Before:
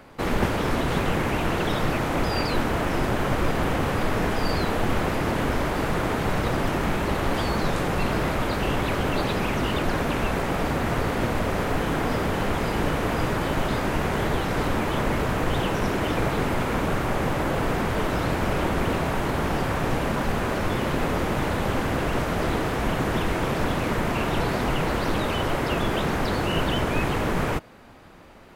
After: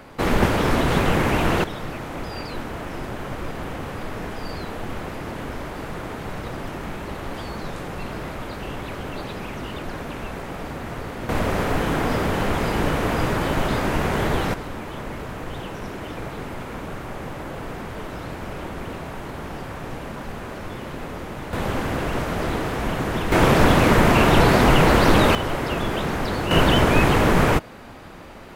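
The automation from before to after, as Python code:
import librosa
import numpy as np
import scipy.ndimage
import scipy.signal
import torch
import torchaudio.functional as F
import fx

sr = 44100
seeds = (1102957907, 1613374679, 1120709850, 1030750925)

y = fx.gain(x, sr, db=fx.steps((0.0, 4.5), (1.64, -7.0), (11.29, 2.5), (14.54, -8.0), (21.53, 0.0), (23.32, 9.5), (25.35, 0.0), (26.51, 7.5)))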